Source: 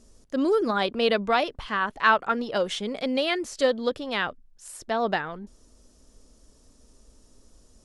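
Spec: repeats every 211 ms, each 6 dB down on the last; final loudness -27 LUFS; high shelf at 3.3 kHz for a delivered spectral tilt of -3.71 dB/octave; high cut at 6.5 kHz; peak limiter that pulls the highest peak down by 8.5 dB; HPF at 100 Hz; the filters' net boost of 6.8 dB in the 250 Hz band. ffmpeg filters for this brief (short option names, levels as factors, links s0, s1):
-af "highpass=100,lowpass=6500,equalizer=f=250:t=o:g=8,highshelf=f=3300:g=-4.5,alimiter=limit=0.158:level=0:latency=1,aecho=1:1:211|422|633|844|1055|1266:0.501|0.251|0.125|0.0626|0.0313|0.0157,volume=0.794"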